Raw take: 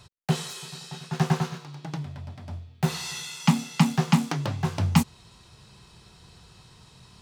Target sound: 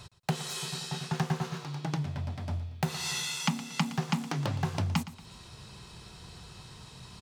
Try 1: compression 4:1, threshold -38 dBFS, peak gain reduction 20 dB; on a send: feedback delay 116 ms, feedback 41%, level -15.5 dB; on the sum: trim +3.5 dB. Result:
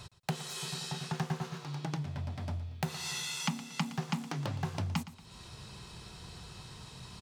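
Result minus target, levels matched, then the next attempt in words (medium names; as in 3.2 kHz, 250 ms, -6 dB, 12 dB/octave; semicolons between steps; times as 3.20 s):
compression: peak gain reduction +4.5 dB
compression 4:1, threshold -32 dBFS, peak gain reduction 15.5 dB; on a send: feedback delay 116 ms, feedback 41%, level -15.5 dB; on the sum: trim +3.5 dB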